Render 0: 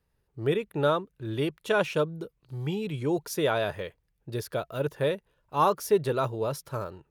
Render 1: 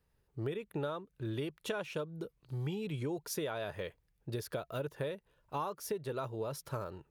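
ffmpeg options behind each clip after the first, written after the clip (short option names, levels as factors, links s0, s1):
-af "acompressor=threshold=0.0224:ratio=10,volume=0.891"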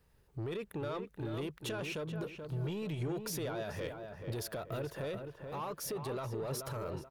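-filter_complex "[0:a]alimiter=level_in=3.98:limit=0.0631:level=0:latency=1:release=19,volume=0.251,asoftclip=type=tanh:threshold=0.01,asplit=2[s0][s1];[s1]adelay=431,lowpass=f=1900:p=1,volume=0.501,asplit=2[s2][s3];[s3]adelay=431,lowpass=f=1900:p=1,volume=0.4,asplit=2[s4][s5];[s5]adelay=431,lowpass=f=1900:p=1,volume=0.4,asplit=2[s6][s7];[s7]adelay=431,lowpass=f=1900:p=1,volume=0.4,asplit=2[s8][s9];[s9]adelay=431,lowpass=f=1900:p=1,volume=0.4[s10];[s0][s2][s4][s6][s8][s10]amix=inputs=6:normalize=0,volume=2.24"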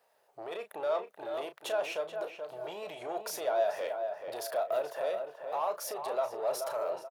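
-filter_complex "[0:a]highpass=f=660:t=q:w=4.9,asplit=2[s0][s1];[s1]adelay=34,volume=0.316[s2];[s0][s2]amix=inputs=2:normalize=0,volume=1.12"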